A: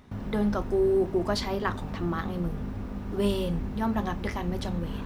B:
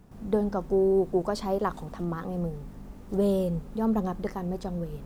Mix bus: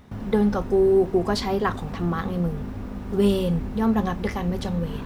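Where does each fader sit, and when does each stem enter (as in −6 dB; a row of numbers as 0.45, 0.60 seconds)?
+2.5, −1.0 decibels; 0.00, 0.00 seconds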